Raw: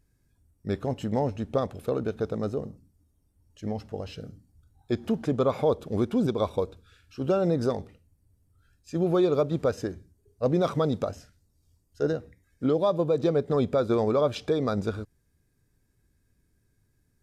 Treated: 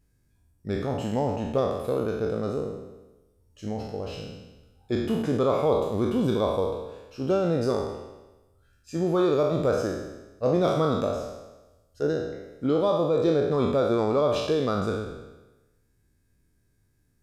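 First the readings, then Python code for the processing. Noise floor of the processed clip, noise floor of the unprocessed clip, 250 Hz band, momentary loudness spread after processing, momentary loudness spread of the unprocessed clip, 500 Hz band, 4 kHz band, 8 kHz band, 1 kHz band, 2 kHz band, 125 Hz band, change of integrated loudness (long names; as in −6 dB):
−67 dBFS, −70 dBFS, +1.0 dB, 13 LU, 13 LU, +2.0 dB, +3.5 dB, can't be measured, +3.0 dB, +3.5 dB, +0.5 dB, +1.5 dB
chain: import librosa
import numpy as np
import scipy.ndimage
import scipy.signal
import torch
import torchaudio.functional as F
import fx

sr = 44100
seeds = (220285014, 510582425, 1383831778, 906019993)

y = fx.spec_trails(x, sr, decay_s=1.09)
y = F.gain(torch.from_numpy(y), -1.5).numpy()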